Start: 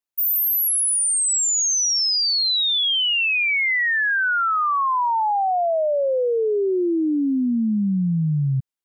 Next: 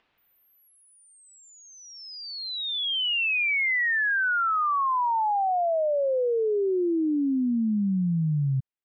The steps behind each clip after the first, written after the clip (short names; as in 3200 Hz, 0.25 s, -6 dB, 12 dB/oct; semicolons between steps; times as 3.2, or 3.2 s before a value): LPF 3200 Hz 24 dB/oct; upward compressor, threshold -45 dBFS; gain -4 dB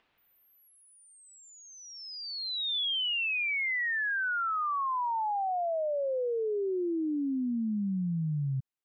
limiter -26 dBFS, peak gain reduction 5 dB; gain -1.5 dB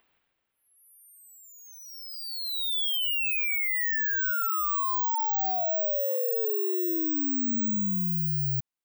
careless resampling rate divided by 2×, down filtered, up zero stuff